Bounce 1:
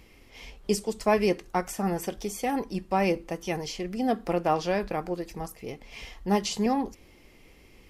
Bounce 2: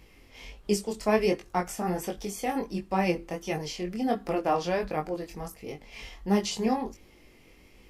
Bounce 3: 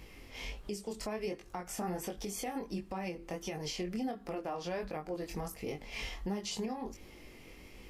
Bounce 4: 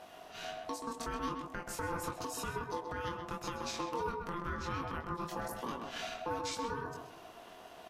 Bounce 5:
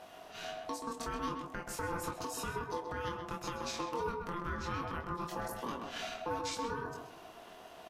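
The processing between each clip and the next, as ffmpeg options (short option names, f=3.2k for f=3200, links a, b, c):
-af "flanger=delay=19.5:depth=3.9:speed=1.4,volume=2dB"
-af "acompressor=threshold=-36dB:ratio=2.5,alimiter=level_in=7.5dB:limit=-24dB:level=0:latency=1:release=225,volume=-7.5dB,volume=3dB"
-filter_complex "[0:a]aeval=exprs='val(0)*sin(2*PI*690*n/s)':c=same,asplit=2[a][b];[b]adelay=129,lowpass=f=2.2k:p=1,volume=-4.5dB,asplit=2[c][d];[d]adelay=129,lowpass=f=2.2k:p=1,volume=0.32,asplit=2[e][f];[f]adelay=129,lowpass=f=2.2k:p=1,volume=0.32,asplit=2[g][h];[h]adelay=129,lowpass=f=2.2k:p=1,volume=0.32[i];[a][c][e][g][i]amix=inputs=5:normalize=0,volume=1.5dB"
-filter_complex "[0:a]asplit=2[a][b];[b]adelay=28,volume=-13dB[c];[a][c]amix=inputs=2:normalize=0"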